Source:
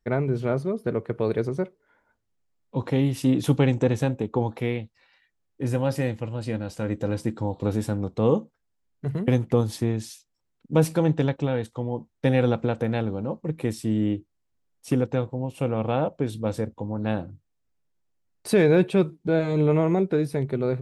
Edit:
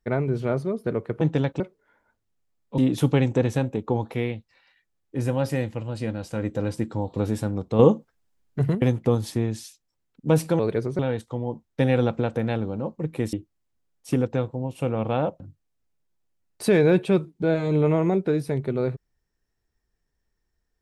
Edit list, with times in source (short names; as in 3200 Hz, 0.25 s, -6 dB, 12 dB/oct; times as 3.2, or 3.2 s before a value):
1.21–1.61 swap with 11.05–11.44
2.79–3.24 cut
8.25–9.21 gain +5.5 dB
13.78–14.12 cut
16.19–17.25 cut